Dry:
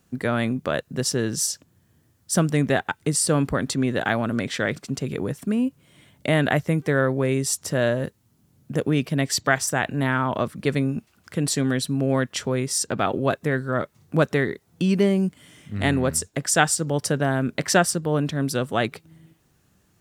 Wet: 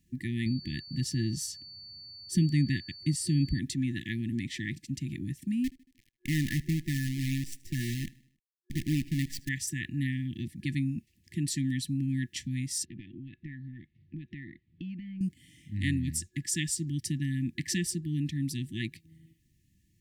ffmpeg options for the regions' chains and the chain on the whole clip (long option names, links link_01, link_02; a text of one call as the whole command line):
ffmpeg -i in.wav -filter_complex "[0:a]asettb=1/sr,asplit=3[link_01][link_02][link_03];[link_01]atrim=end=0.464[link_04];[link_02]atrim=start=0.46:end=3.59,asetpts=PTS-STARTPTS,afade=type=in:duration=0.004:curve=qsin,afade=type=out:start_time=3.126:duration=0.004:curve=qsin,bass=frequency=250:gain=4,treble=frequency=4000:gain=-4,aeval=exprs='val(0)+0.0158*sin(2*PI*4500*n/s)':channel_layout=same[link_05];[link_03]atrim=start=3.586[link_06];[link_04][link_05]acrossfade=duration=0.004:curve1=hsin:curve2=qsin[link_07];[link_07][link_06]acrossfade=duration=0.004:curve1=qsin:curve2=hsin,asettb=1/sr,asplit=3[link_08][link_09][link_10];[link_08]atrim=end=5.644[link_11];[link_09]atrim=start=5.64:end=9.49,asetpts=PTS-STARTPTS,afade=type=in:duration=0.004:curve=qsin,afade=type=out:start_time=3.846:duration=0.004:curve=qsin,highshelf=frequency=3700:gain=-11,acrusher=bits=5:dc=4:mix=0:aa=0.000001,aecho=1:1:77|154|231|308:0.0708|0.0375|0.0199|0.0105,atrim=end_sample=169785[link_12];[link_10]atrim=start=9.486[link_13];[link_11][link_12]acrossfade=duration=0.004:curve1=hsin:curve2=qsin[link_14];[link_14][link_13]acrossfade=duration=0.004:curve1=qsin:curve2=hsin,asettb=1/sr,asplit=3[link_15][link_16][link_17];[link_15]atrim=end=12.854[link_18];[link_16]atrim=start=12.85:end=15.21,asetpts=PTS-STARTPTS,afade=type=in:duration=0.004:curve=qsin,afade=type=out:start_time=2.356:duration=0.004:curve=qsin,lowpass=frequency=3200:width=0.5412,lowpass=frequency=3200:width=1.3066,acompressor=threshold=-30dB:ratio=5:attack=3.2:release=140:knee=1:detection=peak[link_19];[link_17]atrim=start=15.206[link_20];[link_18][link_19]acrossfade=duration=0.004:curve1=hsin:curve2=qsin[link_21];[link_21][link_20]acrossfade=duration=0.004:curve1=qsin:curve2=hsin,lowshelf=frequency=100:gain=10.5,afftfilt=real='re*(1-between(b*sr/4096,360,1700))':imag='im*(1-between(b*sr/4096,360,1700))':win_size=4096:overlap=0.75,volume=-9dB" out.wav